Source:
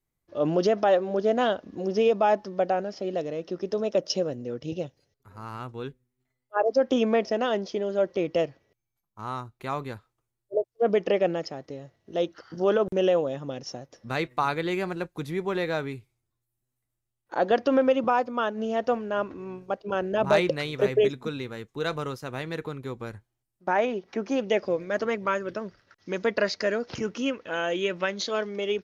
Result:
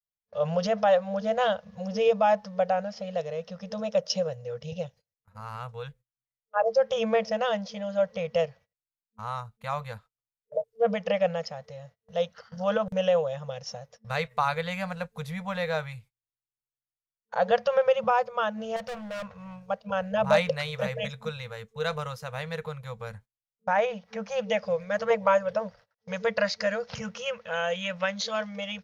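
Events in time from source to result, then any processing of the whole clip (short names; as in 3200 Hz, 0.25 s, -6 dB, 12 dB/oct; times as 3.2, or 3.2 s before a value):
18.76–19.56 overloaded stage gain 32.5 dB
25.1–26.11 band shelf 590 Hz +8.5 dB
whole clip: gate -49 dBFS, range -24 dB; FFT band-reject 220–450 Hz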